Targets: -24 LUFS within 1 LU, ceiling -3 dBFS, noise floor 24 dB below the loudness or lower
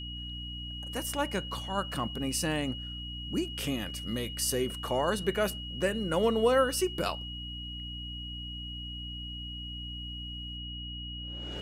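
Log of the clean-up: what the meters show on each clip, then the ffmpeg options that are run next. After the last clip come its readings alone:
hum 60 Hz; harmonics up to 300 Hz; hum level -39 dBFS; steady tone 2900 Hz; tone level -40 dBFS; loudness -32.5 LUFS; peak -14.0 dBFS; loudness target -24.0 LUFS
-> -af "bandreject=f=60:t=h:w=4,bandreject=f=120:t=h:w=4,bandreject=f=180:t=h:w=4,bandreject=f=240:t=h:w=4,bandreject=f=300:t=h:w=4"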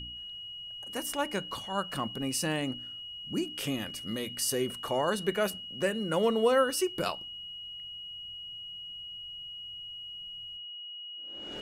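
hum none; steady tone 2900 Hz; tone level -40 dBFS
-> -af "bandreject=f=2.9k:w=30"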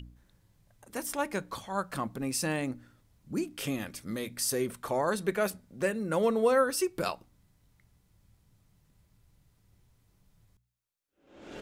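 steady tone none; loudness -31.5 LUFS; peak -15.0 dBFS; loudness target -24.0 LUFS
-> -af "volume=7.5dB"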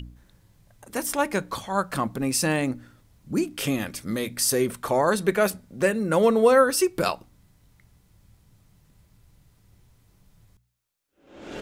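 loudness -24.0 LUFS; peak -7.5 dBFS; noise floor -64 dBFS

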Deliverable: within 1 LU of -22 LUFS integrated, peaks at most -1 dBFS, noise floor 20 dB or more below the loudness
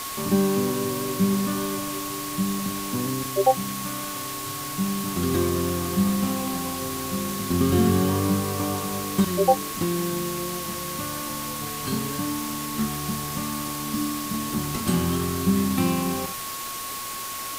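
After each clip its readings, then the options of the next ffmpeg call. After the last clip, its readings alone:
steady tone 1100 Hz; tone level -35 dBFS; noise floor -33 dBFS; noise floor target -46 dBFS; loudness -25.5 LUFS; peak -6.5 dBFS; loudness target -22.0 LUFS
-> -af "bandreject=f=1.1k:w=30"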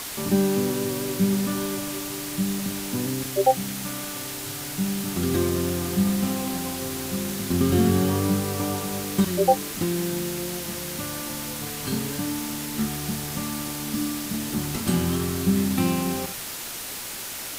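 steady tone none; noise floor -34 dBFS; noise floor target -46 dBFS
-> -af "afftdn=nr=12:nf=-34"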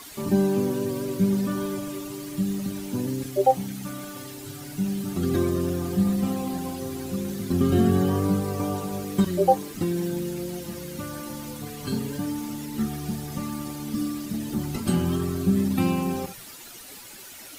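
noise floor -43 dBFS; noise floor target -47 dBFS
-> -af "afftdn=nr=6:nf=-43"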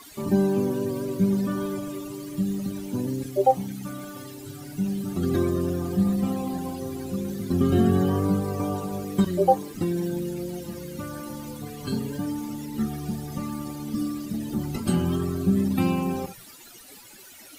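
noise floor -47 dBFS; loudness -26.5 LUFS; peak -7.0 dBFS; loudness target -22.0 LUFS
-> -af "volume=4.5dB"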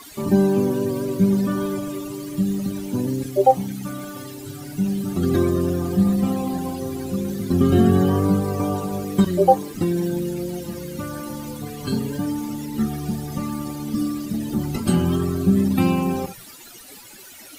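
loudness -22.0 LUFS; peak -2.5 dBFS; noise floor -42 dBFS

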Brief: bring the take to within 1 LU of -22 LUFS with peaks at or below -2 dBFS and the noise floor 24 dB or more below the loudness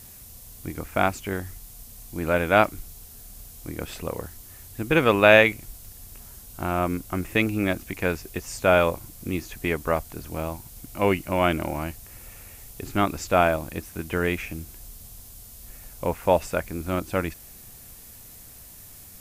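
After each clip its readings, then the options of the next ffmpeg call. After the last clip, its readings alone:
noise floor -46 dBFS; noise floor target -49 dBFS; loudness -24.5 LUFS; peak -1.5 dBFS; loudness target -22.0 LUFS
-> -af "afftdn=nr=6:nf=-46"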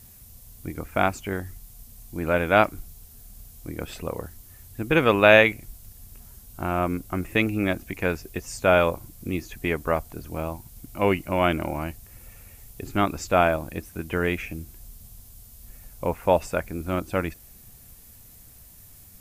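noise floor -49 dBFS; loudness -24.5 LUFS; peak -1.5 dBFS; loudness target -22.0 LUFS
-> -af "volume=2.5dB,alimiter=limit=-2dB:level=0:latency=1"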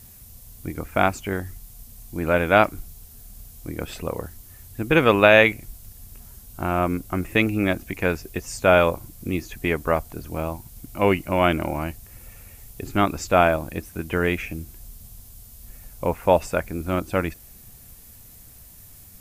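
loudness -22.5 LUFS; peak -2.0 dBFS; noise floor -47 dBFS

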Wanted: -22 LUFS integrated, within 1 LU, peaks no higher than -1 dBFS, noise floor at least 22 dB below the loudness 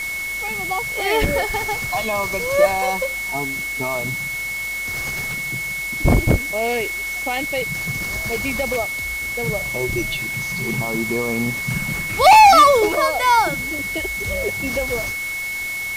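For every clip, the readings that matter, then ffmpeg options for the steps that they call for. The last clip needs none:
steady tone 2200 Hz; tone level -24 dBFS; noise floor -26 dBFS; noise floor target -41 dBFS; loudness -19.0 LUFS; peak -4.0 dBFS; loudness target -22.0 LUFS
-> -af "bandreject=f=2.2k:w=30"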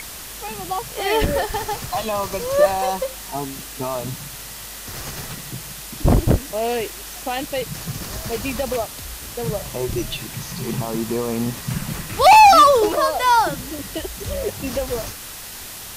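steady tone none; noise floor -35 dBFS; noise floor target -42 dBFS
-> -af "afftdn=nr=7:nf=-35"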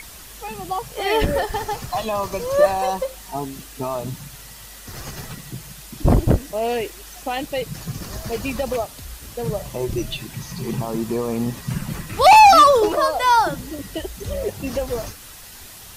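noise floor -41 dBFS; noise floor target -42 dBFS
-> -af "afftdn=nr=6:nf=-41"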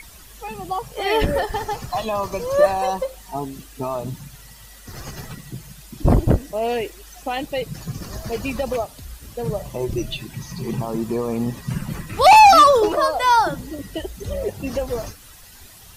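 noise floor -44 dBFS; loudness -20.0 LUFS; peak -4.5 dBFS; loudness target -22.0 LUFS
-> -af "volume=-2dB"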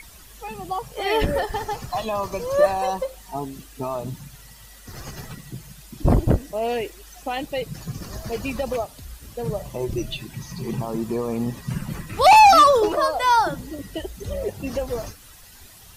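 loudness -22.0 LUFS; peak -6.5 dBFS; noise floor -46 dBFS

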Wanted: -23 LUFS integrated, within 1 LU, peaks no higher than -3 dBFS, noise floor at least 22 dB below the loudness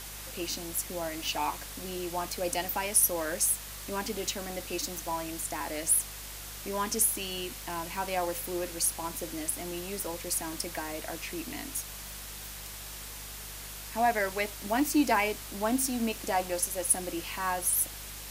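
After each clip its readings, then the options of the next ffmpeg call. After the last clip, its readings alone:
hum 50 Hz; harmonics up to 200 Hz; hum level -46 dBFS; noise floor -43 dBFS; noise floor target -53 dBFS; loudness -31.0 LUFS; peak -9.5 dBFS; loudness target -23.0 LUFS
-> -af "bandreject=f=50:t=h:w=4,bandreject=f=100:t=h:w=4,bandreject=f=150:t=h:w=4,bandreject=f=200:t=h:w=4"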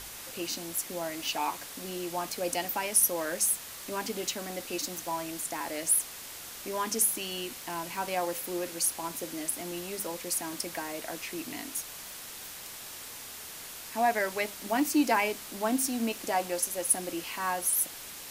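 hum none; noise floor -44 dBFS; noise floor target -53 dBFS
-> -af "afftdn=nr=9:nf=-44"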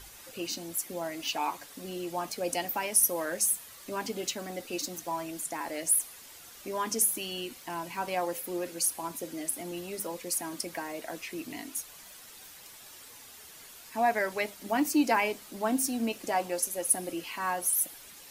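noise floor -50 dBFS; noise floor target -53 dBFS
-> -af "afftdn=nr=6:nf=-50"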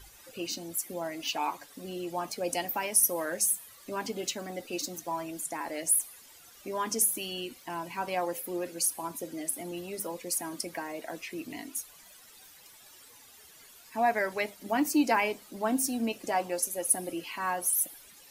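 noise floor -55 dBFS; loudness -31.0 LUFS; peak -10.0 dBFS; loudness target -23.0 LUFS
-> -af "volume=8dB,alimiter=limit=-3dB:level=0:latency=1"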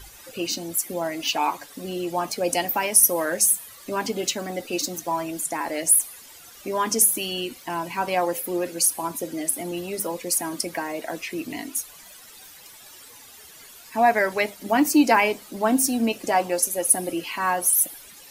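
loudness -23.0 LUFS; peak -3.0 dBFS; noise floor -47 dBFS

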